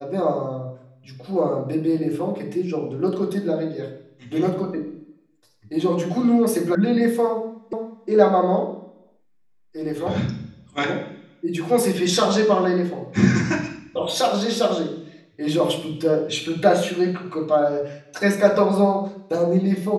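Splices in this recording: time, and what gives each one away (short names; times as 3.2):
6.75 sound cut off
7.73 repeat of the last 0.36 s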